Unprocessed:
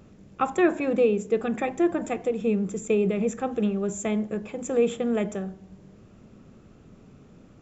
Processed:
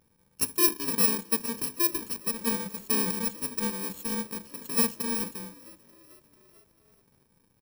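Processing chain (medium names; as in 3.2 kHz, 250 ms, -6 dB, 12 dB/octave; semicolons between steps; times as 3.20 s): bit-reversed sample order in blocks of 64 samples; hum notches 50/100/150/200/250/300/350 Hz; power-law waveshaper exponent 1.4; frequency-shifting echo 443 ms, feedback 60%, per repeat +47 Hz, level -22.5 dB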